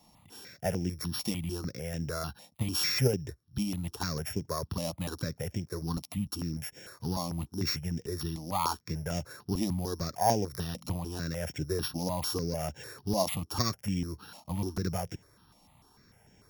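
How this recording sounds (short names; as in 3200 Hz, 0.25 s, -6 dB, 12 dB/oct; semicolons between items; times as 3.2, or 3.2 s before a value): a buzz of ramps at a fixed pitch in blocks of 8 samples; notches that jump at a steady rate 6.7 Hz 410–4200 Hz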